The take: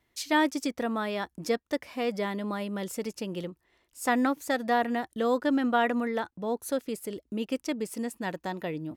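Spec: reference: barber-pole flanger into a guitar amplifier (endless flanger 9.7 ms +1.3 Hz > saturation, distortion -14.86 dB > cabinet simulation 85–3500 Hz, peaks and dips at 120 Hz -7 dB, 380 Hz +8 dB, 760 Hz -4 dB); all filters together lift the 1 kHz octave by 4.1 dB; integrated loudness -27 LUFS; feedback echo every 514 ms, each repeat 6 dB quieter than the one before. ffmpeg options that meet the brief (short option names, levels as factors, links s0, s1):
-filter_complex "[0:a]equalizer=f=1000:t=o:g=7.5,aecho=1:1:514|1028|1542|2056|2570|3084:0.501|0.251|0.125|0.0626|0.0313|0.0157,asplit=2[s0][s1];[s1]adelay=9.7,afreqshift=1.3[s2];[s0][s2]amix=inputs=2:normalize=1,asoftclip=threshold=0.112,highpass=85,equalizer=f=120:t=q:w=4:g=-7,equalizer=f=380:t=q:w=4:g=8,equalizer=f=760:t=q:w=4:g=-4,lowpass=f=3500:w=0.5412,lowpass=f=3500:w=1.3066,volume=1.58"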